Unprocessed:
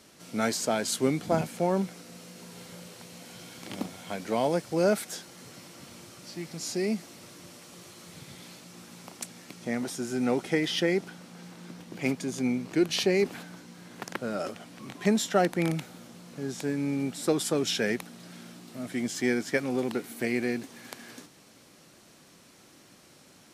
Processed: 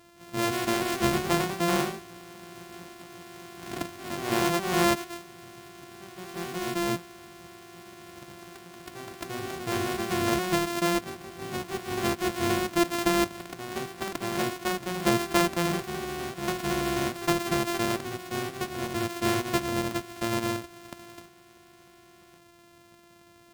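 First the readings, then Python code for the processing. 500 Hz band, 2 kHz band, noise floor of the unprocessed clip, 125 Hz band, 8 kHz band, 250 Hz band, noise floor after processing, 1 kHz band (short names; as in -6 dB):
-0.5 dB, +3.0 dB, -56 dBFS, +1.5 dB, +1.0 dB, +0.5 dB, -56 dBFS, +6.5 dB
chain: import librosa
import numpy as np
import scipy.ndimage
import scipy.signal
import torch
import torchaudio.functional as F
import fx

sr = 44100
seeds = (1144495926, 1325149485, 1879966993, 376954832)

y = np.r_[np.sort(x[:len(x) // 128 * 128].reshape(-1, 128), axis=1).ravel(), x[len(x) // 128 * 128:]]
y = fx.echo_pitch(y, sr, ms=169, semitones=1, count=2, db_per_echo=-6.0)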